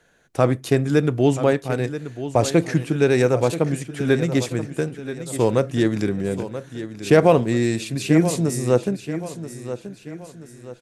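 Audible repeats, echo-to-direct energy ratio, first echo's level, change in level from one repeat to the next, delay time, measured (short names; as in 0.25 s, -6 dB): 3, -11.5 dB, -12.0 dB, -8.0 dB, 0.981 s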